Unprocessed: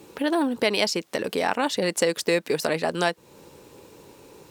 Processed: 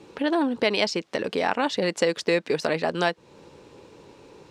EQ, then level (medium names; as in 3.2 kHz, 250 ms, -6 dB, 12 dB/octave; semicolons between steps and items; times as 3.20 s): low-pass 5.2 kHz 12 dB/octave; 0.0 dB